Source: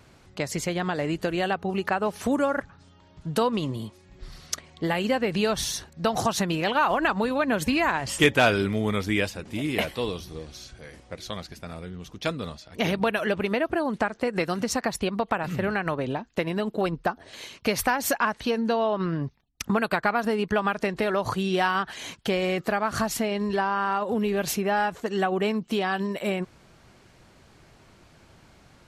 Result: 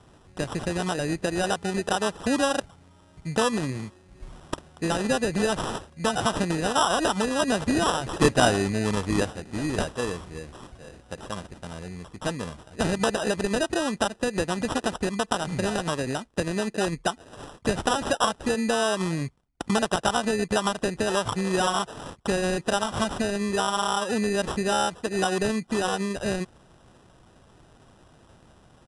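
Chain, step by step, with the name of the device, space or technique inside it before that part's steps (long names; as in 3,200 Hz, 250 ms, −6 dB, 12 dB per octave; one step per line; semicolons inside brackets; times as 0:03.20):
crushed at another speed (tape speed factor 2×; decimation without filtering 10×; tape speed factor 0.5×)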